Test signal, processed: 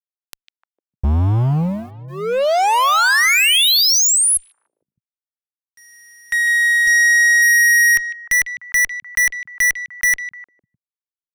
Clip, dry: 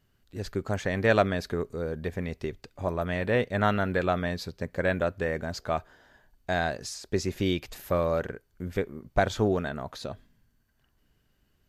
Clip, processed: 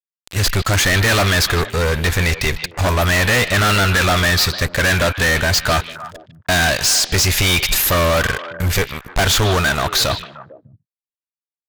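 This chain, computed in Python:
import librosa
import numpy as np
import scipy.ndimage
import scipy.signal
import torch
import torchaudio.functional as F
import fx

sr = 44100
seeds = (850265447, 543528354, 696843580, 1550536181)

y = fx.tone_stack(x, sr, knobs='10-0-10')
y = fx.fuzz(y, sr, gain_db=50.0, gate_db=-58.0)
y = fx.echo_stepped(y, sr, ms=151, hz=2900.0, octaves=-1.4, feedback_pct=70, wet_db=-8)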